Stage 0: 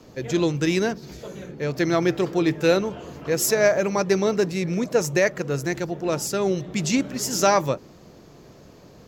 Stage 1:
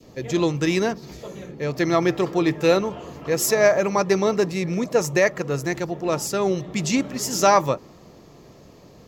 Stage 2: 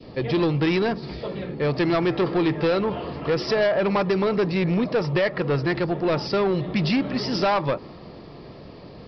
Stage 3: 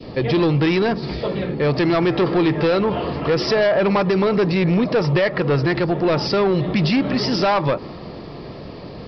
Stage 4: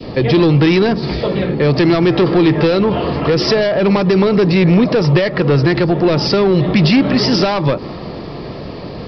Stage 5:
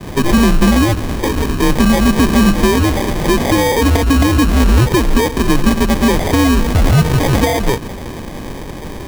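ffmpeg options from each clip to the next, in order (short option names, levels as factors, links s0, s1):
-af "bandreject=f=1500:w=8.2,adynamicequalizer=threshold=0.0224:dfrequency=1100:dqfactor=1:tfrequency=1100:tqfactor=1:attack=5:release=100:ratio=0.375:range=2.5:mode=boostabove:tftype=bell"
-af "acompressor=threshold=0.112:ratio=6,aresample=11025,asoftclip=type=tanh:threshold=0.075,aresample=44100,volume=2"
-af "alimiter=limit=0.1:level=0:latency=1:release=90,volume=2.37"
-filter_complex "[0:a]acrossover=split=430|3000[s0][s1][s2];[s1]acompressor=threshold=0.0562:ratio=6[s3];[s0][s3][s2]amix=inputs=3:normalize=0,volume=2.24"
-af "afreqshift=-120,acrusher=samples=32:mix=1:aa=0.000001,volume=1.12"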